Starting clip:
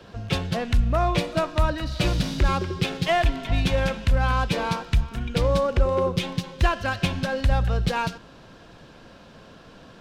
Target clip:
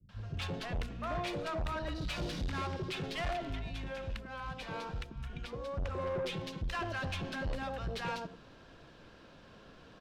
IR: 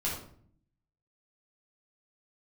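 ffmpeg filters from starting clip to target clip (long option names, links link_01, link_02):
-filter_complex "[0:a]asettb=1/sr,asplit=3[link_01][link_02][link_03];[link_01]atrim=end=3.324[link_04];[link_02]atrim=start=3.32:end=5.77,asetpts=PTS-STARTPTS,afade=type=in:duration=0.004:curve=qsin,afade=type=out:start_time=2.446:duration=0.004:curve=qsin,acompressor=threshold=-27dB:ratio=6[link_05];[link_03]atrim=start=5.766[link_06];[link_04][link_05]acrossfade=duration=0.004:curve1=hsin:curve2=qsin[link_07];[link_07][link_06]acrossfade=duration=0.004:curve1=qsin:curve2=hsin,bandreject=frequency=60:width_type=h:width=6,bandreject=frequency=120:width_type=h:width=6,bandreject=frequency=180:width_type=h:width=6,bandreject=frequency=240:width_type=h:width=6,acrossover=split=190|750[link_08][link_09][link_10];[link_10]adelay=90[link_11];[link_09]adelay=180[link_12];[link_08][link_12][link_11]amix=inputs=3:normalize=0,asoftclip=type=tanh:threshold=-25dB,highshelf=frequency=6500:gain=-8,volume=-6.5dB"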